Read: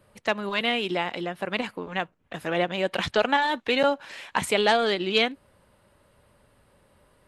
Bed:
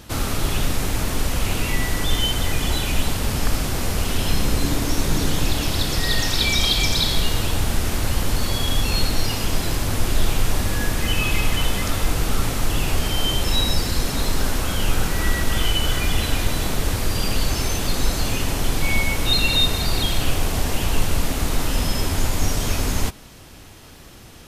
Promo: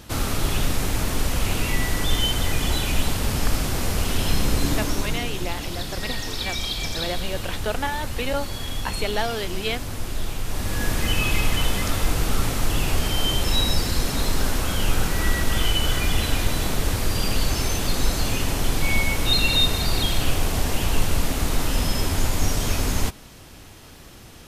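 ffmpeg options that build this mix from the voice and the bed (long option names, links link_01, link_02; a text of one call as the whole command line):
ffmpeg -i stem1.wav -i stem2.wav -filter_complex "[0:a]adelay=4500,volume=-5dB[link_01];[1:a]volume=6.5dB,afade=type=out:start_time=4.71:duration=0.54:silence=0.421697,afade=type=in:start_time=10.45:duration=0.46:silence=0.421697[link_02];[link_01][link_02]amix=inputs=2:normalize=0" out.wav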